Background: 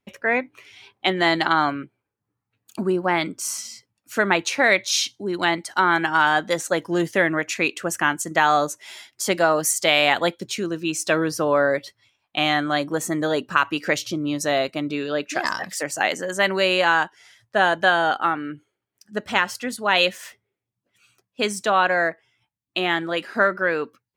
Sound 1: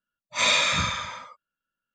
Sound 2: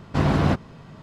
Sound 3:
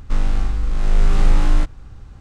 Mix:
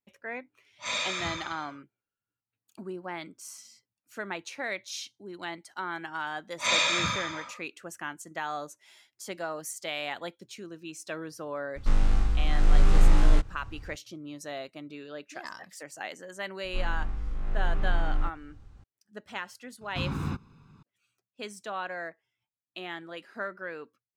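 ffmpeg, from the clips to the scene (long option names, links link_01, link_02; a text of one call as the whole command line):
ffmpeg -i bed.wav -i cue0.wav -i cue1.wav -i cue2.wav -filter_complex "[1:a]asplit=2[link_01][link_02];[3:a]asplit=2[link_03][link_04];[0:a]volume=-16.5dB[link_05];[link_02]highpass=98[link_06];[link_04]acrossover=split=2800[link_07][link_08];[link_08]acompressor=threshold=-56dB:ratio=4:attack=1:release=60[link_09];[link_07][link_09]amix=inputs=2:normalize=0[link_10];[2:a]aecho=1:1:0.8:0.86[link_11];[link_01]atrim=end=1.94,asetpts=PTS-STARTPTS,volume=-10dB,afade=type=in:duration=0.004:curve=hsin,afade=type=out:start_time=1.936:duration=0.004:curve=hsin,adelay=470[link_12];[link_06]atrim=end=1.94,asetpts=PTS-STARTPTS,volume=-3.5dB,afade=type=in:duration=0.004:curve=hsin,afade=type=out:start_time=1.936:duration=0.004:curve=hsin,adelay=276066S[link_13];[link_03]atrim=end=2.2,asetpts=PTS-STARTPTS,volume=-4.5dB,afade=type=in:duration=0.004:curve=hsin,afade=type=out:start_time=2.196:duration=0.004:curve=hsin,adelay=11760[link_14];[link_10]atrim=end=2.2,asetpts=PTS-STARTPTS,volume=-12.5dB,afade=type=in:duration=0.004:curve=hsin,afade=type=out:start_time=2.196:duration=0.004:curve=hsin,adelay=16640[link_15];[link_11]atrim=end=1.02,asetpts=PTS-STARTPTS,volume=-16dB,afade=type=in:duration=0.004:curve=hsin,afade=type=out:start_time=1.016:duration=0.004:curve=hsin,adelay=19810[link_16];[link_05][link_12][link_13][link_14][link_15][link_16]amix=inputs=6:normalize=0" out.wav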